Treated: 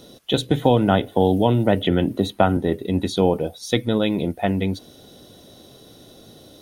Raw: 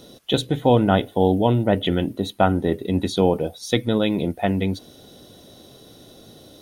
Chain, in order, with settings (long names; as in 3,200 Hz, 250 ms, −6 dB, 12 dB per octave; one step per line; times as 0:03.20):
0:00.51–0:02.57: multiband upward and downward compressor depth 70%